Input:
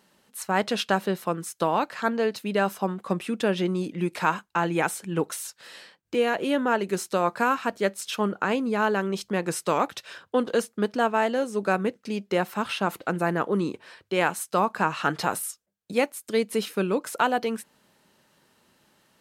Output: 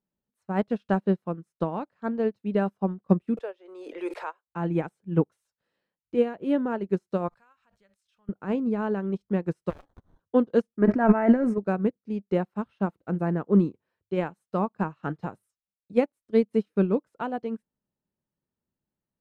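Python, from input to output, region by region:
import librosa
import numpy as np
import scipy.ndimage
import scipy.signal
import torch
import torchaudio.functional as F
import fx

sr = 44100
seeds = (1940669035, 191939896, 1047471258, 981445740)

y = fx.chain(x, sr, fx.steep_highpass(hz=440.0, slope=36),
    fx.pre_swell(db_per_s=20.0), at=(3.37, 4.47))
y = fx.chain(y, sr, fx.tone_stack(knobs='10-0-10'),
    fx.pre_swell(db_per_s=68.0), at=(7.28, 8.29))
y = fx.chain(y, sr, fx.bass_treble(bass_db=-15, treble_db=8),
    fx.sample_hold(seeds[0], rate_hz=2500.0, jitter_pct=0),
    fx.transformer_sat(knee_hz=1700.0), at=(9.7, 10.2))
y = fx.chain(y, sr, fx.high_shelf_res(hz=2600.0, db=-7.5, q=3.0),
    fx.comb(ms=3.1, depth=0.46),
    fx.sustainer(db_per_s=36.0), at=(10.75, 11.58))
y = fx.tilt_eq(y, sr, slope=-4.5)
y = fx.upward_expand(y, sr, threshold_db=-33.0, expansion=2.5)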